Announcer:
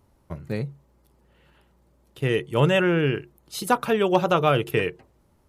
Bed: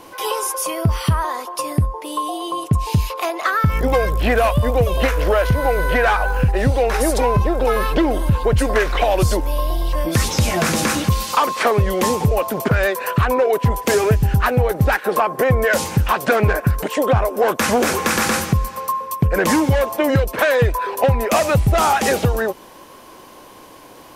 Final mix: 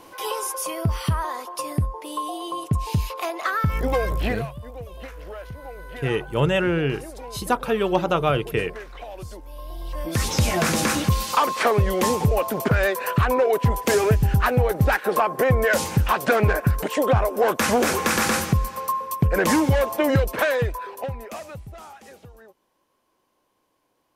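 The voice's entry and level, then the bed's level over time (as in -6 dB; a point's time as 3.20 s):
3.80 s, -1.0 dB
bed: 4.26 s -5.5 dB
4.47 s -20.5 dB
9.43 s -20.5 dB
10.34 s -3 dB
20.33 s -3 dB
21.97 s -28.5 dB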